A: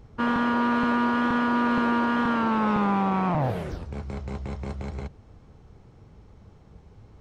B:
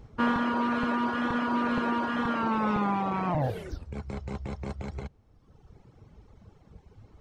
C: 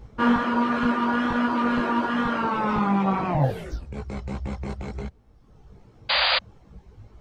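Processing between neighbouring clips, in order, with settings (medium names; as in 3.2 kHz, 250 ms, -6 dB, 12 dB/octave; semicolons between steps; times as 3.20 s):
reverb removal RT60 1.3 s
chorus voices 4, 1.2 Hz, delay 18 ms, depth 3 ms; painted sound noise, 6.09–6.39 s, 510–4900 Hz -28 dBFS; trim +7 dB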